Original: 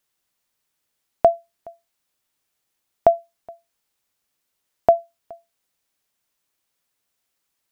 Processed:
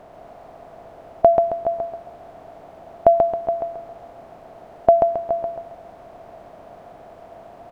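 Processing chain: per-bin compression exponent 0.4; high shelf 2000 Hz -10 dB; feedback echo 0.135 s, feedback 42%, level -3.5 dB; gain +1 dB

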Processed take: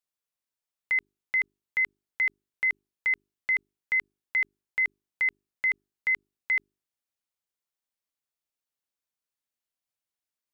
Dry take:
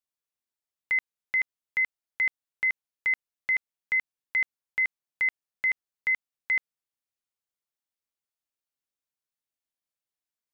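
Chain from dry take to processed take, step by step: notches 50/100/150/200/250/300/350/400 Hz

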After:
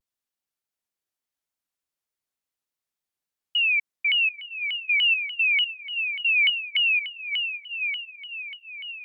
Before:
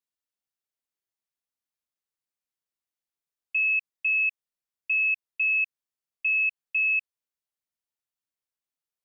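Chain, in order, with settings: diffused feedback echo 0.903 s, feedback 42%, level -7 dB; shaped vibrato saw down 3.4 Hz, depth 250 cents; gain +2 dB

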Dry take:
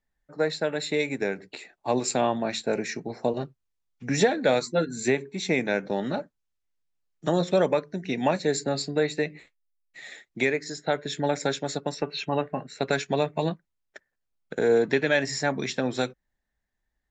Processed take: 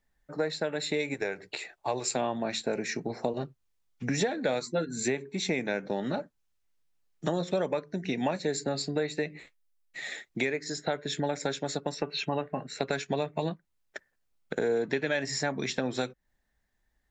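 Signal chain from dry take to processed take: 1.14–2.16 bell 230 Hz -12 dB 0.91 oct; compressor 2.5:1, threshold -36 dBFS, peak gain reduction 13.5 dB; gain +5 dB

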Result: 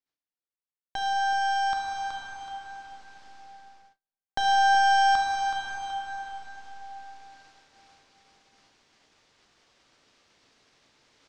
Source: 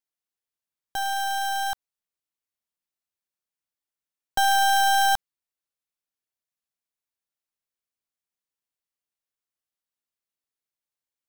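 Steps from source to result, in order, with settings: reverse; upward compressor, threshold -27 dBFS; reverse; bell 280 Hz +3 dB 1.7 oct; feedback echo 0.374 s, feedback 31%, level -8 dB; plate-style reverb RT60 4 s, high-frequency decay 0.6×, DRR -1 dB; in parallel at -1 dB: compressor, threshold -28 dBFS, peak gain reduction 15.5 dB; on the sum: gate -45 dBFS, range -37 dB; LPF 5800 Hz 24 dB/oct; gain -8 dB

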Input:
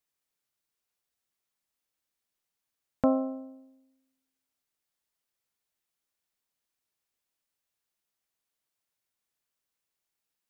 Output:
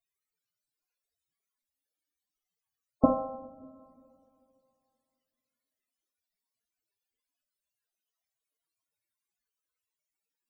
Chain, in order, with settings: 3.05–3.62 fixed phaser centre 400 Hz, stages 8; loudest bins only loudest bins 32; two-slope reverb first 0.42 s, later 2.6 s, from -19 dB, DRR 4 dB; gain +5 dB

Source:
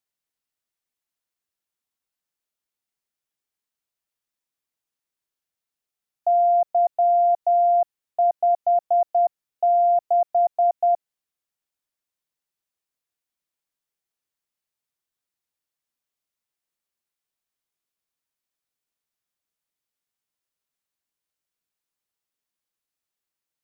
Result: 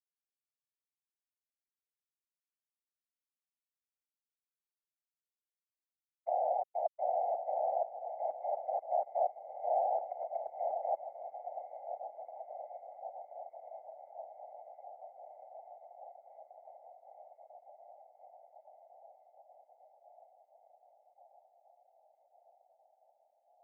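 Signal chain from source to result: expander -9 dBFS; 10.04–10.52 negative-ratio compressor -36 dBFS, ratio -0.5; fixed phaser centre 860 Hz, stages 6; on a send: diffused feedback echo 1.047 s, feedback 71%, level -9.5 dB; on the sum: whisperiser; mismatched tape noise reduction encoder only; gain +3 dB

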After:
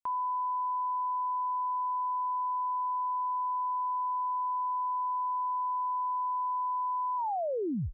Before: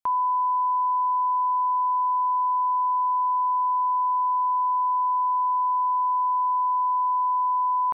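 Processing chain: tape stop at the end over 0.76 s; gain -8.5 dB

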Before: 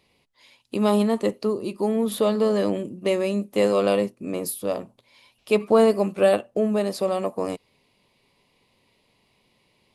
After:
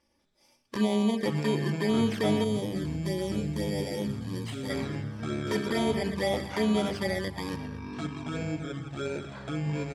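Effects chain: FFT order left unsorted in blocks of 32 samples; feedback echo 0.116 s, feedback 45%, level -15 dB; limiter -15.5 dBFS, peak gain reduction 9 dB; LPF 5300 Hz 12 dB/oct; envelope flanger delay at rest 3.5 ms, full sweep at -21 dBFS; notches 50/100/150/200/250/300/350/400/450 Hz; echoes that change speed 0.193 s, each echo -6 st, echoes 3, each echo -6 dB; 2.44–4.7 bell 1300 Hz -11 dB 2.8 oct

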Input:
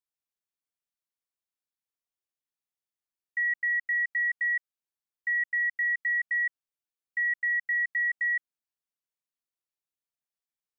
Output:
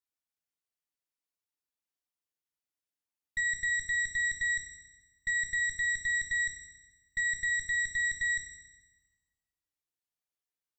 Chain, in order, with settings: added harmonics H 3 -29 dB, 4 -13 dB, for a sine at -23 dBFS; FDN reverb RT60 1.2 s, low-frequency decay 1.25×, high-frequency decay 0.95×, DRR 3 dB; gain -2.5 dB

